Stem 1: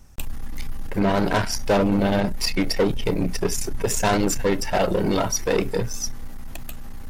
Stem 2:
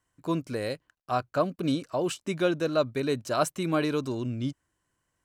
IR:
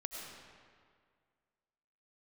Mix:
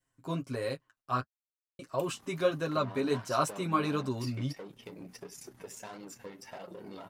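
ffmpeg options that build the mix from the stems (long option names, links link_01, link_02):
-filter_complex "[0:a]highpass=170,acompressor=threshold=-26dB:ratio=10,adelay=1800,volume=-12dB[link_01];[1:a]aecho=1:1:7.4:0.69,volume=-2dB,asplit=3[link_02][link_03][link_04];[link_02]atrim=end=1.24,asetpts=PTS-STARTPTS,afade=type=out:start_time=1.236:duration=0.004:curve=hsin[link_05];[link_03]atrim=start=1.24:end=1.79,asetpts=PTS-STARTPTS,volume=0[link_06];[link_04]atrim=start=1.79,asetpts=PTS-STARTPTS,afade=type=in:duration=0.004:curve=hsin[link_07];[link_05][link_06][link_07]concat=n=3:v=0:a=1[link_08];[link_01][link_08]amix=inputs=2:normalize=0,adynamicequalizer=threshold=0.00316:dfrequency=1100:dqfactor=3.2:tfrequency=1100:tqfactor=3.2:attack=5:release=100:ratio=0.375:range=4:mode=boostabove:tftype=bell,flanger=delay=5.3:depth=6.5:regen=-37:speed=1.5:shape=triangular"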